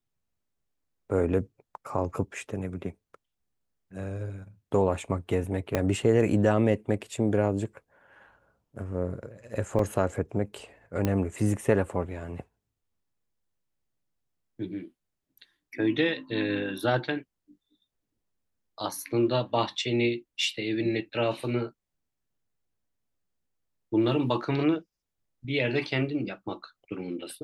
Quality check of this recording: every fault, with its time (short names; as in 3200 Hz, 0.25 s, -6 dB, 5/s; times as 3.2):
5.75 pop -11 dBFS
9.79 gap 2.5 ms
11.05 pop -13 dBFS